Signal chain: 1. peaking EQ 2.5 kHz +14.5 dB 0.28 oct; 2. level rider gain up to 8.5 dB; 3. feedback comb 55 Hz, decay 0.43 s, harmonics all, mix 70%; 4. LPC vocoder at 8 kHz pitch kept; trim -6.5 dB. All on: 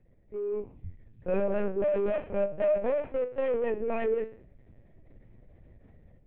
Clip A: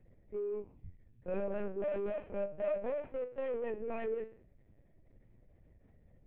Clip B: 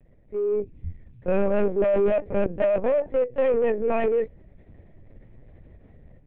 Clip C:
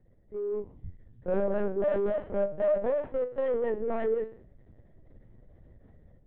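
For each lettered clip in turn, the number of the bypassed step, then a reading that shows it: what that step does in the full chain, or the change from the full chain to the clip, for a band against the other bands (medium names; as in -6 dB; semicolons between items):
2, momentary loudness spread change -2 LU; 3, loudness change +6.0 LU; 1, 2 kHz band -2.0 dB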